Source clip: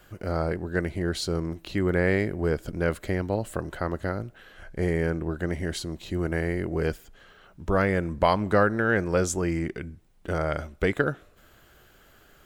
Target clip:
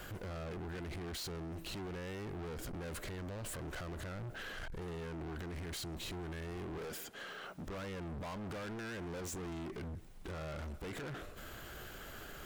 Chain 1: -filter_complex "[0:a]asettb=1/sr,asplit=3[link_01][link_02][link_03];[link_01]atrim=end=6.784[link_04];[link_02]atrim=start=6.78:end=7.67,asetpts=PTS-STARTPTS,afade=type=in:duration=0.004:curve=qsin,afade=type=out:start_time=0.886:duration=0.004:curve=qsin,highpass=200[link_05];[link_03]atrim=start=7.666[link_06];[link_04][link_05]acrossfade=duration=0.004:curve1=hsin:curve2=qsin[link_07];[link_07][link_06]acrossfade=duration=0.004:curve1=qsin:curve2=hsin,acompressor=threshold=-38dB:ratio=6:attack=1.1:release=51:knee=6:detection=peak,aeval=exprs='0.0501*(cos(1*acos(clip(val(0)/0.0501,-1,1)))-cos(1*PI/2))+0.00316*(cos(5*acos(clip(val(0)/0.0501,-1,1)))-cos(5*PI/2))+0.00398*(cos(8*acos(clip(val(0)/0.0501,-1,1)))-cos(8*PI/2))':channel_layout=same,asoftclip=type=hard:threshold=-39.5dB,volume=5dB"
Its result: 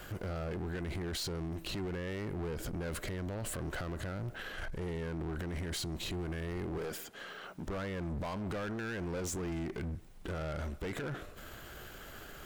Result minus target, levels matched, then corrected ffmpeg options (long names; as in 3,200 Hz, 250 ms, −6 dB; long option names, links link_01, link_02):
hard clipping: distortion −4 dB
-filter_complex "[0:a]asettb=1/sr,asplit=3[link_01][link_02][link_03];[link_01]atrim=end=6.784[link_04];[link_02]atrim=start=6.78:end=7.67,asetpts=PTS-STARTPTS,afade=type=in:duration=0.004:curve=qsin,afade=type=out:start_time=0.886:duration=0.004:curve=qsin,highpass=200[link_05];[link_03]atrim=start=7.666[link_06];[link_04][link_05]acrossfade=duration=0.004:curve1=hsin:curve2=qsin[link_07];[link_07][link_06]acrossfade=duration=0.004:curve1=qsin:curve2=hsin,acompressor=threshold=-38dB:ratio=6:attack=1.1:release=51:knee=6:detection=peak,aeval=exprs='0.0501*(cos(1*acos(clip(val(0)/0.0501,-1,1)))-cos(1*PI/2))+0.00316*(cos(5*acos(clip(val(0)/0.0501,-1,1)))-cos(5*PI/2))+0.00398*(cos(8*acos(clip(val(0)/0.0501,-1,1)))-cos(8*PI/2))':channel_layout=same,asoftclip=type=hard:threshold=-46.5dB,volume=5dB"